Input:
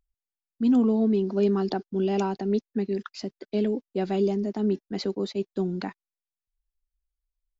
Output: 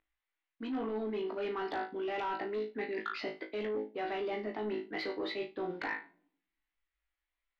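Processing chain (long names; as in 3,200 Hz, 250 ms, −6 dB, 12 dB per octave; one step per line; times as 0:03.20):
low-pass filter 3,600 Hz 24 dB per octave
tilt shelving filter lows −6.5 dB, about 930 Hz
notch filter 370 Hz, Q 12
flutter between parallel walls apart 3.2 metres, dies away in 0.29 s
on a send at −19.5 dB: convolution reverb RT60 0.65 s, pre-delay 5 ms
on the sum: mid-hump overdrive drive 15 dB, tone 1,200 Hz, clips at −14.5 dBFS
thirty-one-band graphic EQ 200 Hz −12 dB, 315 Hz +10 dB, 2,000 Hz +7 dB
soft clipping −18.5 dBFS, distortion −22 dB
reversed playback
downward compressor, threshold −34 dBFS, peak gain reduction 11.5 dB
reversed playback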